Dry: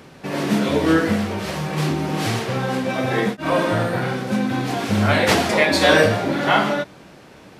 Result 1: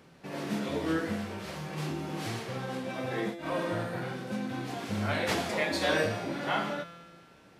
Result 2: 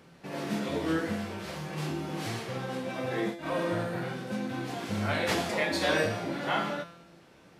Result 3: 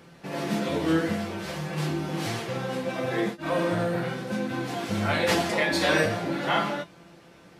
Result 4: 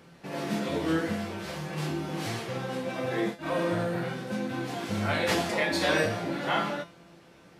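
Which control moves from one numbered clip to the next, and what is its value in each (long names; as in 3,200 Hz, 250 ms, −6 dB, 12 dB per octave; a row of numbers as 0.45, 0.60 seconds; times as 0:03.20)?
tuned comb filter, decay: 1.9, 0.87, 0.16, 0.39 seconds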